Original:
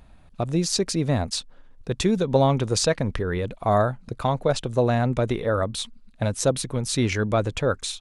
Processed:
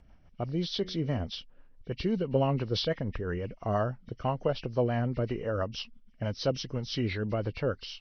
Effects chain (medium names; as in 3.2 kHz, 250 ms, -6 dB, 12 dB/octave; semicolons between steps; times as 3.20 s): knee-point frequency compression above 1.8 kHz 1.5:1; rotary cabinet horn 6 Hz; 0.77–1.20 s: de-hum 92.3 Hz, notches 33; trim -5.5 dB